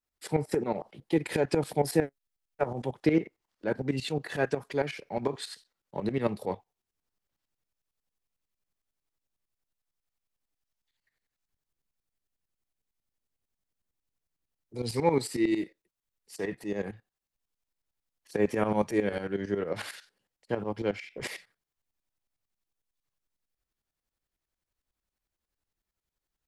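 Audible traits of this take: tremolo saw up 11 Hz, depth 80%

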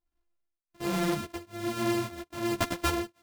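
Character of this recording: a buzz of ramps at a fixed pitch in blocks of 128 samples; tremolo triangle 1.2 Hz, depth 100%; a shimmering, thickened sound

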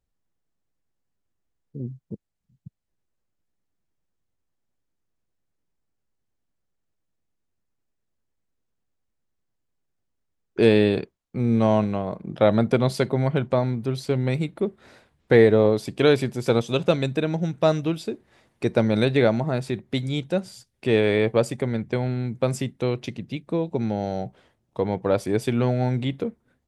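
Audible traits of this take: noise floor -77 dBFS; spectral tilt -6.0 dB/octave

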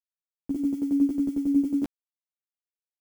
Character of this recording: a quantiser's noise floor 8-bit, dither none; tremolo saw down 11 Hz, depth 75%; a shimmering, thickened sound

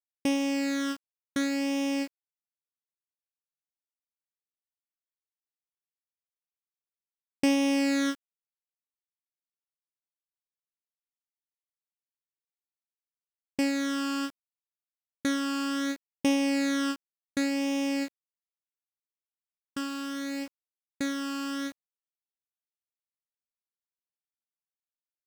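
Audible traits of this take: phasing stages 12, 0.69 Hz, lowest notch 670–1400 Hz; a quantiser's noise floor 8-bit, dither none

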